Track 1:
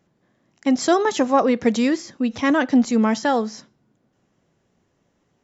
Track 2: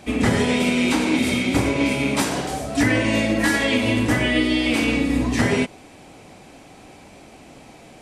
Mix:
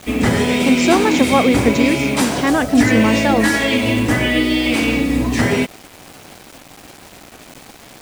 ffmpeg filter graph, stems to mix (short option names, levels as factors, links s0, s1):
-filter_complex "[0:a]volume=1.26[s0];[1:a]acontrast=30,acrusher=bits=5:mix=0:aa=0.000001,volume=0.841[s1];[s0][s1]amix=inputs=2:normalize=0"